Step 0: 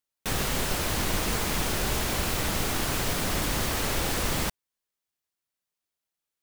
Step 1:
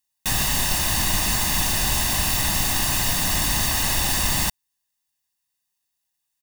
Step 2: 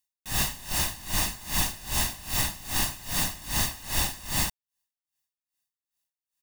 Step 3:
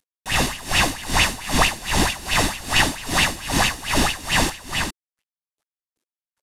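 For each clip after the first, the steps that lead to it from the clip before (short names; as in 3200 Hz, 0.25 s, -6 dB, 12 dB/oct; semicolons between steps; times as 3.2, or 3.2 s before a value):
high shelf 2700 Hz +8.5 dB; comb 1.1 ms, depth 67%
dB-linear tremolo 2.5 Hz, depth 21 dB; gain -2 dB
CVSD 64 kbps; echo 0.407 s -4.5 dB; LFO bell 4.5 Hz 250–2900 Hz +14 dB; gain +6 dB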